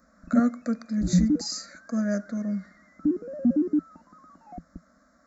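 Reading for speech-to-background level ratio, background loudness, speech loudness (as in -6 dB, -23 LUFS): -2.5 dB, -26.5 LUFS, -29.0 LUFS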